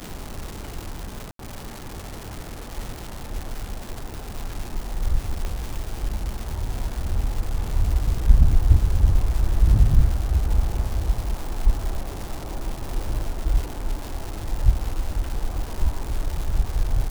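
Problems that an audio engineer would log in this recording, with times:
crackle 470 per s -28 dBFS
1.31–1.39 s: dropout 83 ms
5.45 s: pop -15 dBFS

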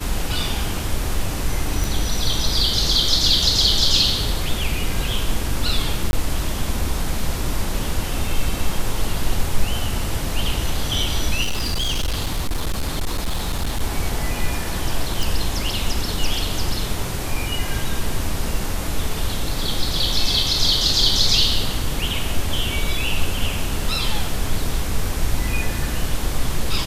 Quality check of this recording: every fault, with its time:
1.84 s: pop
6.11–6.13 s: dropout 21 ms
11.42–13.82 s: clipped -17.5 dBFS
15.23 s: pop

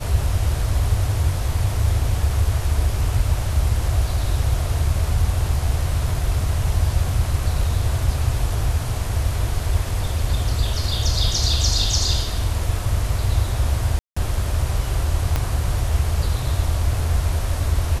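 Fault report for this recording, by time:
13.99–14.16 s: dropout 175 ms
15.36 s: pop -8 dBFS

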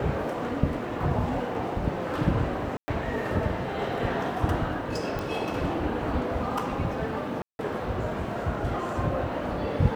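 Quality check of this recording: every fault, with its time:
2.77–2.88 s: dropout 110 ms
5.19 s: pop -18 dBFS
7.42–7.59 s: dropout 171 ms

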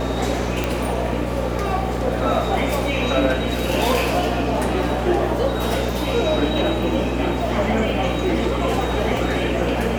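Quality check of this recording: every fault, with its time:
buzz 60 Hz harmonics 10 -25 dBFS
0.64 s: pop -7 dBFS

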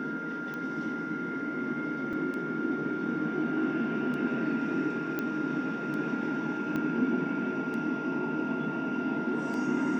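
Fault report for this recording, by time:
tick 33 1/3 rpm -26 dBFS
whine 1.4 kHz -36 dBFS
2.13 s: dropout 4.7 ms
5.19 s: pop -18 dBFS
6.76 s: pop -21 dBFS

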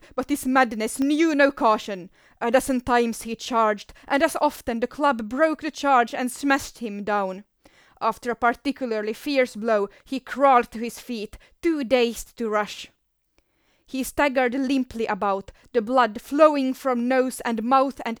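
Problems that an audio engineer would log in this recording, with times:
1.02 s: pop -16 dBFS

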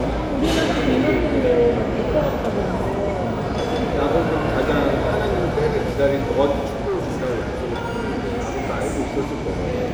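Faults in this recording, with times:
6.66–8.61 s: clipped -19.5 dBFS

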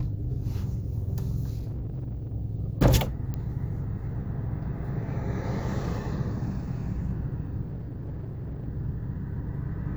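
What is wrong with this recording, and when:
1.57–2.34 s: clipped -29.5 dBFS
3.34 s: pop -21 dBFS
7.63–8.68 s: clipped -31.5 dBFS

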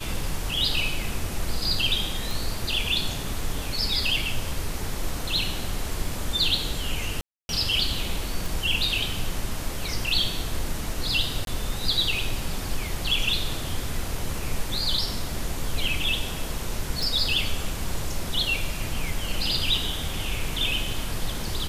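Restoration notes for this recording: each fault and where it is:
2.31 s: pop
7.21–7.49 s: dropout 281 ms
8.46 s: pop
11.45–11.47 s: dropout 22 ms
17.03 s: pop

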